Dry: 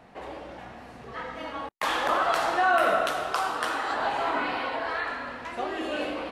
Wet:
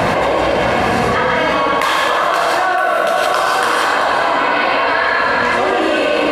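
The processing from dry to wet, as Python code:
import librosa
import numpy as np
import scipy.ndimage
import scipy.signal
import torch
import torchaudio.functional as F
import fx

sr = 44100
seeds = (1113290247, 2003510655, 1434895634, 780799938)

y = scipy.signal.sosfilt(scipy.signal.butter(2, 80.0, 'highpass', fs=sr, output='sos'), x)
y = fx.notch(y, sr, hz=430.0, q=12.0)
y = y + 0.3 * np.pad(y, (int(1.9 * sr / 1000.0), 0))[:len(y)]
y = y + 10.0 ** (-12.0 / 20.0) * np.pad(y, (int(386 * sr / 1000.0), 0))[:len(y)]
y = fx.rev_gated(y, sr, seeds[0], gate_ms=190, shape='rising', drr_db=-1.0)
y = fx.env_flatten(y, sr, amount_pct=100)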